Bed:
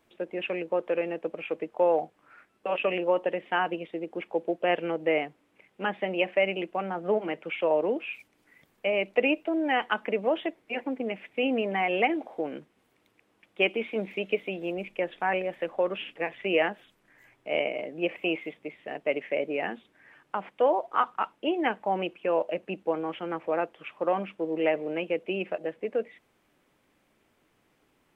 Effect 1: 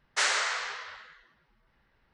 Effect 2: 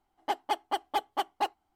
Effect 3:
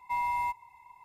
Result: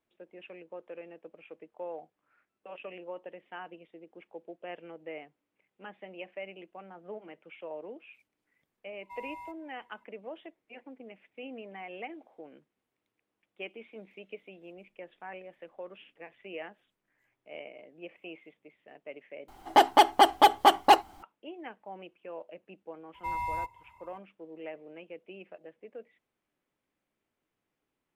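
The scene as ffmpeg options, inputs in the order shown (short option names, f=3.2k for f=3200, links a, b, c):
-filter_complex "[3:a]asplit=2[a][b];[0:a]volume=-16.5dB[c];[2:a]alimiter=level_in=32.5dB:limit=-1dB:release=50:level=0:latency=1[d];[b]bass=f=250:g=11,treble=f=4k:g=0[e];[c]asplit=2[f][g];[f]atrim=end=19.484[h];[d]atrim=end=1.75,asetpts=PTS-STARTPTS,volume=-9dB[i];[g]atrim=start=21.226[j];[a]atrim=end=1.04,asetpts=PTS-STARTPTS,volume=-14.5dB,afade=t=in:d=0.004:c=hsin,afade=t=out:st=1.036:d=0.004:c=hsin,adelay=9000[k];[e]atrim=end=1.04,asetpts=PTS-STARTPTS,volume=-3.5dB,afade=t=in:d=0.004:c=hsin,afade=t=out:st=1.036:d=0.004:c=hsin,adelay=23140[l];[h][i]acrossfade=d=0.004:c1=hsin:c2=hsin[m];[m][j]acrossfade=d=0.004:c1=hsin:c2=hsin[n];[n][k][l]amix=inputs=3:normalize=0"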